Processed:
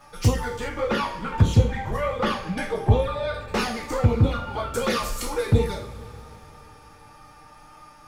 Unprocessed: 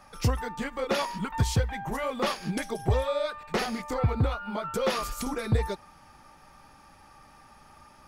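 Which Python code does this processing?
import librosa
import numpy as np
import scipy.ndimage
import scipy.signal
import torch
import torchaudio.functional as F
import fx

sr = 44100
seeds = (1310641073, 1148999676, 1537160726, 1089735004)

y = fx.spec_trails(x, sr, decay_s=0.43)
y = fx.bass_treble(y, sr, bass_db=2, treble_db=-10, at=(0.68, 3.34))
y = fx.dmg_crackle(y, sr, seeds[0], per_s=19.0, level_db=-51.0)
y = fx.env_flanger(y, sr, rest_ms=7.4, full_db=-18.5)
y = fx.rev_double_slope(y, sr, seeds[1], early_s=0.24, late_s=4.0, knee_db=-20, drr_db=5.5)
y = F.gain(torch.from_numpy(y), 4.5).numpy()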